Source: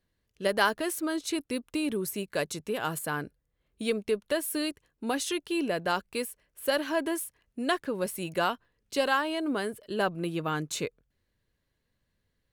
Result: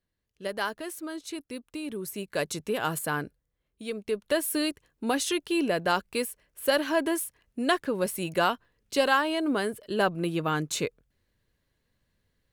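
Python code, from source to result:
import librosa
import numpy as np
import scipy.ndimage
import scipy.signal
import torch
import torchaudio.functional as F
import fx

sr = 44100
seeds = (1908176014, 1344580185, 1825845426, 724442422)

y = fx.gain(x, sr, db=fx.line((1.83, -6.0), (2.53, 2.5), (3.18, 2.5), (3.83, -7.0), (4.35, 3.0)))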